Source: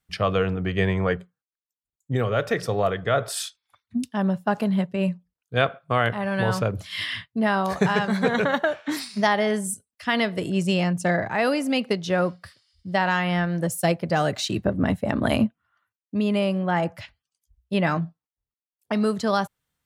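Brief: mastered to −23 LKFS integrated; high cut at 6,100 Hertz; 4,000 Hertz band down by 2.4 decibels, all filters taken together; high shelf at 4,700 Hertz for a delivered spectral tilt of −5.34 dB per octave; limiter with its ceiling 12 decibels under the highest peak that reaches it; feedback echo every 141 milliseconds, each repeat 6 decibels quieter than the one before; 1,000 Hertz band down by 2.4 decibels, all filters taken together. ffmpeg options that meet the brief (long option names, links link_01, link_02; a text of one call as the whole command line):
ffmpeg -i in.wav -af "lowpass=6100,equalizer=frequency=1000:width_type=o:gain=-3.5,equalizer=frequency=4000:width_type=o:gain=-6,highshelf=frequency=4700:gain=7.5,alimiter=limit=-18dB:level=0:latency=1,aecho=1:1:141|282|423|564|705|846:0.501|0.251|0.125|0.0626|0.0313|0.0157,volume=4.5dB" out.wav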